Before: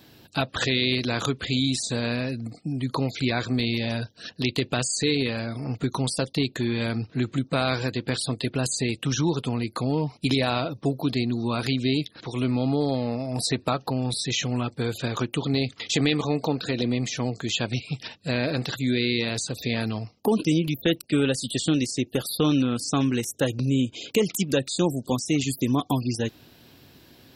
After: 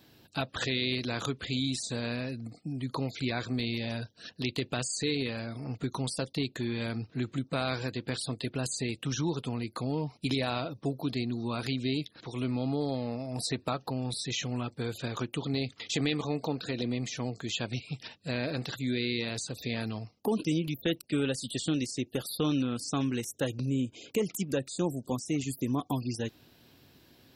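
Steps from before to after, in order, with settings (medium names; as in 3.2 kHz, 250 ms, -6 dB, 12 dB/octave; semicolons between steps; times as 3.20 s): 23.66–25.93 s: peaking EQ 3.7 kHz -6.5 dB 1.1 oct; trim -7 dB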